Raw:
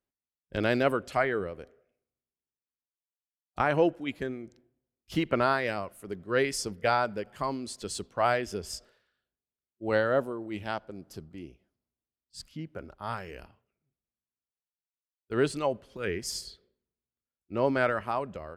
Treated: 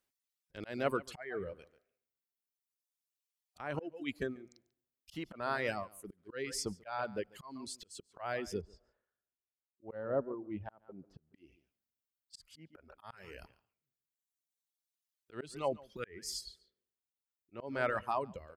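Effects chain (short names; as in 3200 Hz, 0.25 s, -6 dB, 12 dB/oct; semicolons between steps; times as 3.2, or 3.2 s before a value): echo 0.142 s -14.5 dB; auto swell 0.366 s; reverb removal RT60 1.8 s; 8.61–11.34 LPF 1000 Hz 12 dB/oct; mismatched tape noise reduction encoder only; gain -2.5 dB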